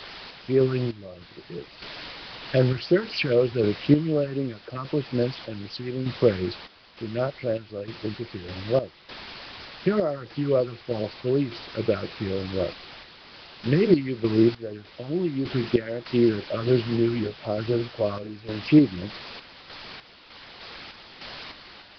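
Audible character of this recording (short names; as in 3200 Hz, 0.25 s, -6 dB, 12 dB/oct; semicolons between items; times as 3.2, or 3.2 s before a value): phasing stages 4, 3.9 Hz, lowest notch 480–3500 Hz; a quantiser's noise floor 6-bit, dither triangular; random-step tremolo 3.3 Hz, depth 85%; Nellymoser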